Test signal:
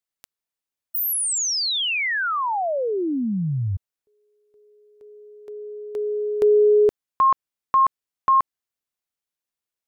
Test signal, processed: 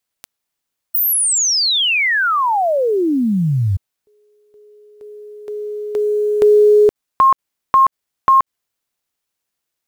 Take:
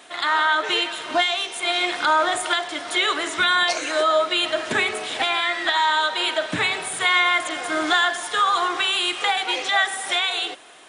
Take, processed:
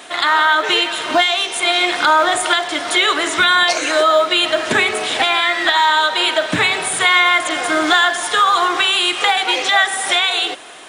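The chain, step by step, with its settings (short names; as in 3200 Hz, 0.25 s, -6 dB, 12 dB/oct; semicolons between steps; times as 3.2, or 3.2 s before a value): in parallel at 0 dB: compressor 10:1, threshold -26 dBFS; on the sum: companded quantiser 8-bit; gain +3.5 dB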